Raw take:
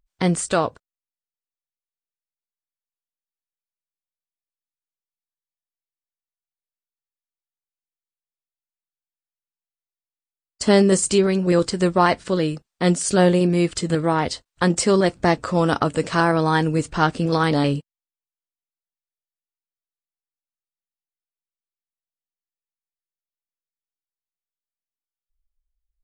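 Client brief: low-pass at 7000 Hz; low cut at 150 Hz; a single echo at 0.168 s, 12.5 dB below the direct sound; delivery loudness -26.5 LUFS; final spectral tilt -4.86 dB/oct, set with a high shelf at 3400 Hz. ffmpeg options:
-af "highpass=150,lowpass=7k,highshelf=f=3.4k:g=4,aecho=1:1:168:0.237,volume=-6.5dB"

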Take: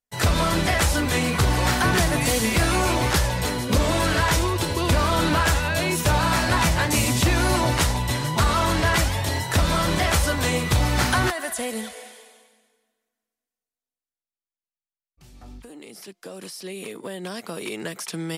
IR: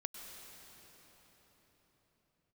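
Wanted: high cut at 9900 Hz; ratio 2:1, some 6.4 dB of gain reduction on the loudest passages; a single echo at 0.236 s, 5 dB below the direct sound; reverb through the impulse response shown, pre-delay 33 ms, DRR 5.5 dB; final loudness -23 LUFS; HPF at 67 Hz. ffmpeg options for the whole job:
-filter_complex "[0:a]highpass=67,lowpass=9.9k,acompressor=threshold=-28dB:ratio=2,aecho=1:1:236:0.562,asplit=2[a][b];[1:a]atrim=start_sample=2205,adelay=33[c];[b][c]afir=irnorm=-1:irlink=0,volume=-4dB[d];[a][d]amix=inputs=2:normalize=0,volume=2.5dB"

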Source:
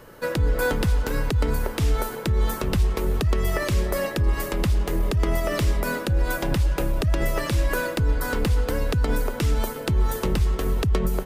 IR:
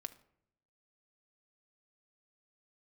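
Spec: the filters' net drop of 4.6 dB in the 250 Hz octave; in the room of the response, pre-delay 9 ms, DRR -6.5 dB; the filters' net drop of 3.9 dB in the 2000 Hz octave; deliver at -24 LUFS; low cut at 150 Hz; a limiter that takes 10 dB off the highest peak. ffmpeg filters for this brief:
-filter_complex "[0:a]highpass=150,equalizer=f=250:t=o:g=-5.5,equalizer=f=2k:t=o:g=-5.5,alimiter=limit=-23dB:level=0:latency=1,asplit=2[a][b];[1:a]atrim=start_sample=2205,adelay=9[c];[b][c]afir=irnorm=-1:irlink=0,volume=10dB[d];[a][d]amix=inputs=2:normalize=0,volume=1.5dB"

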